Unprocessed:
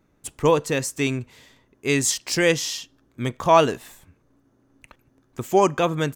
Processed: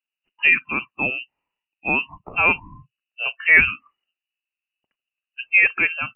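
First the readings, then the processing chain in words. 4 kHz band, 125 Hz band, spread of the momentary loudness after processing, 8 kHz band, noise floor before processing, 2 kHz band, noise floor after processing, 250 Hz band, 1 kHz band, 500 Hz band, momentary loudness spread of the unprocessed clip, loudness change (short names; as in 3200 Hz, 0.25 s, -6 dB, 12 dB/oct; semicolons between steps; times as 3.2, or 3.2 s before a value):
-5.5 dB, -12.0 dB, 14 LU, under -40 dB, -64 dBFS, +12.5 dB, under -85 dBFS, -9.5 dB, -7.0 dB, -14.5 dB, 15 LU, +3.5 dB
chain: spectral noise reduction 30 dB; inverted band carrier 2900 Hz; gain +1.5 dB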